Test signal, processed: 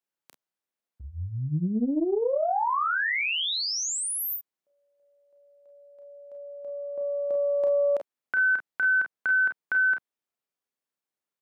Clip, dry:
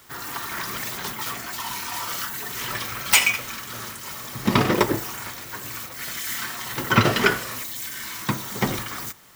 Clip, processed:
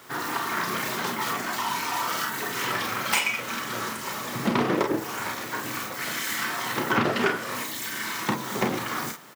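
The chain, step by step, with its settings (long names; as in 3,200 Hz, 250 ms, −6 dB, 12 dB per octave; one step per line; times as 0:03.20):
high-pass filter 180 Hz 12 dB per octave
high-shelf EQ 2,200 Hz −8.5 dB
downward compressor 2.5 to 1, threshold −33 dBFS
on a send: ambience of single reflections 33 ms −6.5 dB, 46 ms −8 dB
on the sum: highs frequency-modulated by the lows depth 0.31 ms
level +7 dB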